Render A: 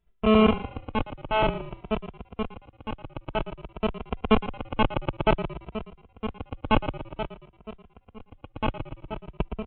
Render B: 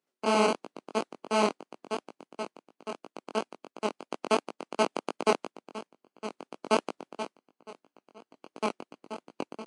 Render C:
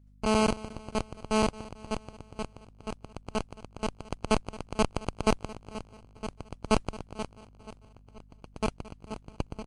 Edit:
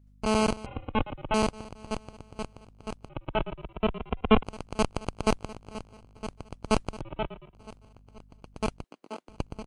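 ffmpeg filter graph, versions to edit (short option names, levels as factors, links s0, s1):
-filter_complex "[0:a]asplit=3[s0][s1][s2];[2:a]asplit=5[s3][s4][s5][s6][s7];[s3]atrim=end=0.662[s8];[s0]atrim=start=0.658:end=1.342[s9];[s4]atrim=start=1.338:end=3.092[s10];[s1]atrim=start=3.088:end=4.432[s11];[s5]atrim=start=4.428:end=7.012[s12];[s2]atrim=start=7.008:end=7.542[s13];[s6]atrim=start=7.538:end=8.842[s14];[1:a]atrim=start=8.838:end=9.292[s15];[s7]atrim=start=9.288[s16];[s8][s9]acrossfade=d=0.004:c1=hsin:c2=hsin[s17];[s17][s10]acrossfade=d=0.004:c1=hsin:c2=hsin[s18];[s18][s11]acrossfade=d=0.004:c1=hsin:c2=hsin[s19];[s19][s12]acrossfade=d=0.004:c1=hsin:c2=hsin[s20];[s20][s13]acrossfade=d=0.004:c1=hsin:c2=hsin[s21];[s21][s14]acrossfade=d=0.004:c1=hsin:c2=hsin[s22];[s22][s15]acrossfade=d=0.004:c1=hsin:c2=hsin[s23];[s23][s16]acrossfade=d=0.004:c1=hsin:c2=hsin"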